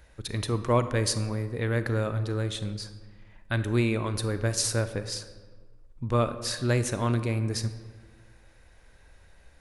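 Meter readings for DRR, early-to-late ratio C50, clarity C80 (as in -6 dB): 10.5 dB, 11.5 dB, 13.5 dB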